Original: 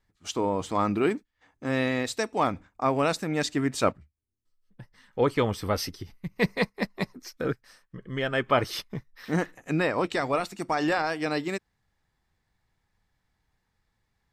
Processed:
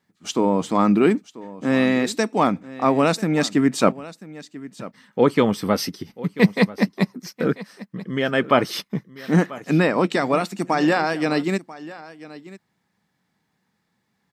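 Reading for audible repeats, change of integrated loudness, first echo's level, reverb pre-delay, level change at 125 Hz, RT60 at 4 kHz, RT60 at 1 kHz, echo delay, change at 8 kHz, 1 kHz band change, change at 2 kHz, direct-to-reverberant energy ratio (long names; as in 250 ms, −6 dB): 1, +7.0 dB, −18.0 dB, no reverb audible, +7.5 dB, no reverb audible, no reverb audible, 990 ms, +5.0 dB, +5.5 dB, +5.0 dB, no reverb audible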